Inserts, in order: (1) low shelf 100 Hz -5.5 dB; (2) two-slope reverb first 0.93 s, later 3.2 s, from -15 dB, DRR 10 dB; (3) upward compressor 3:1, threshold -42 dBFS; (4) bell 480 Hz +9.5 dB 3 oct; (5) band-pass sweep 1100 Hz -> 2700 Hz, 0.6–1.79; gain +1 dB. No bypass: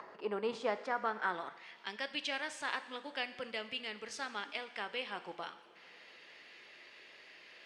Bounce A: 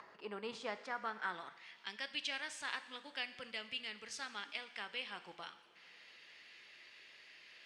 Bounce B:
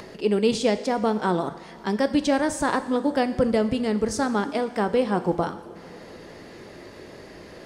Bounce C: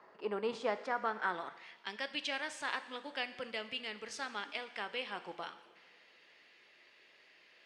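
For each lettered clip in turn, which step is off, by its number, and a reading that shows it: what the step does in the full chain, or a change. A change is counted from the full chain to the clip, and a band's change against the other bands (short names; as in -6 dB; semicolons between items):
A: 4, 8 kHz band +5.5 dB; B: 5, 125 Hz band +13.0 dB; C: 3, momentary loudness spread change -9 LU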